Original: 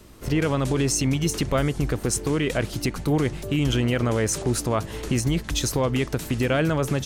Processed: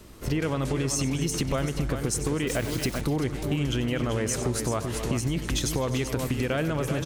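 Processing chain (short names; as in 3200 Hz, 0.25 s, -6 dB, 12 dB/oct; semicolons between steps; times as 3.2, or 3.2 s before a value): on a send: tapped delay 95/251/386 ms -13.5/-16.5/-9 dB; 2.47–3.01 on the sum: requantised 6-bit, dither none; compressor, threshold -23 dBFS, peak gain reduction 6.5 dB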